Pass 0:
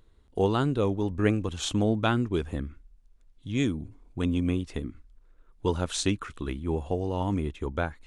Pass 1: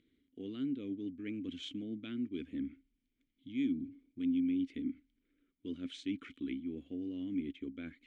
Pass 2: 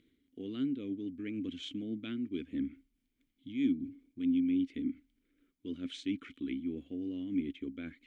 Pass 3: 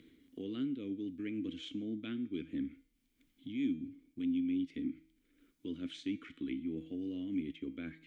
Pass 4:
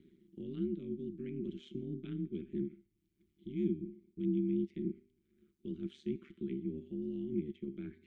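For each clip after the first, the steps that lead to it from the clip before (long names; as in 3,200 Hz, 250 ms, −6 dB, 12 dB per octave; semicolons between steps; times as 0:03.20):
reversed playback; downward compressor 6 to 1, threshold −34 dBFS, peak gain reduction 15.5 dB; reversed playback; formant filter i; level +8 dB
amplitude modulation by smooth noise, depth 55%; level +5 dB
tuned comb filter 160 Hz, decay 0.54 s, harmonics all, mix 60%; multiband upward and downward compressor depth 40%; level +5 dB
low shelf with overshoot 350 Hz +6.5 dB, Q 3; ring modulation 73 Hz; level −8 dB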